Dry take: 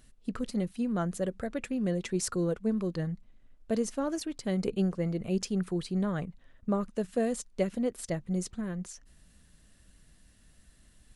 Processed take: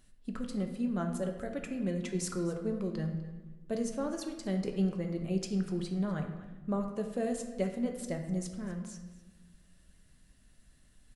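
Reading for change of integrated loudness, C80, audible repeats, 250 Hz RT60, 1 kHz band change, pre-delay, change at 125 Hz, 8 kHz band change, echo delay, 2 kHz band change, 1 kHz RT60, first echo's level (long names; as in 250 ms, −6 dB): −3.0 dB, 9.0 dB, 1, 1.7 s, −3.0 dB, 3 ms, −2.0 dB, −4.0 dB, 249 ms, −3.5 dB, 1.1 s, −17.5 dB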